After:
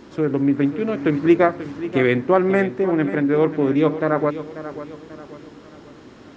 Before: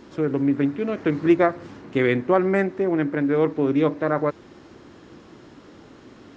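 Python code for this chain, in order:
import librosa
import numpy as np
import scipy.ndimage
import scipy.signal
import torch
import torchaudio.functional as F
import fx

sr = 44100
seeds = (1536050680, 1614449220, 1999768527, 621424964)

y = fx.echo_feedback(x, sr, ms=538, feedback_pct=41, wet_db=-13)
y = F.gain(torch.from_numpy(y), 2.5).numpy()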